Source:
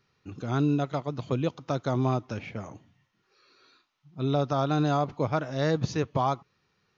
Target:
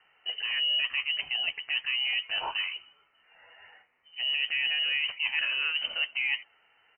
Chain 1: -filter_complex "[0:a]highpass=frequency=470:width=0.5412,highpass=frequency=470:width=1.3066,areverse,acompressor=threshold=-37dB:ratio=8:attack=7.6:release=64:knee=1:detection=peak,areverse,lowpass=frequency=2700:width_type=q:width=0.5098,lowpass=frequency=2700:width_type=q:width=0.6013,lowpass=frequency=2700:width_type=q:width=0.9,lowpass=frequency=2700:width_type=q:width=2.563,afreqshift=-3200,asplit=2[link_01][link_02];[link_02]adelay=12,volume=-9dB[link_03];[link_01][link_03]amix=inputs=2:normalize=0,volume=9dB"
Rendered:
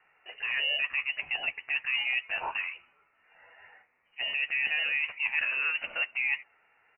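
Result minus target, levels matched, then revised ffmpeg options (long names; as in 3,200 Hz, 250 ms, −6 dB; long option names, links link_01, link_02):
500 Hz band +4.5 dB
-filter_complex "[0:a]highpass=frequency=210:width=0.5412,highpass=frequency=210:width=1.3066,areverse,acompressor=threshold=-37dB:ratio=8:attack=7.6:release=64:knee=1:detection=peak,areverse,lowpass=frequency=2700:width_type=q:width=0.5098,lowpass=frequency=2700:width_type=q:width=0.6013,lowpass=frequency=2700:width_type=q:width=0.9,lowpass=frequency=2700:width_type=q:width=2.563,afreqshift=-3200,asplit=2[link_01][link_02];[link_02]adelay=12,volume=-9dB[link_03];[link_01][link_03]amix=inputs=2:normalize=0,volume=9dB"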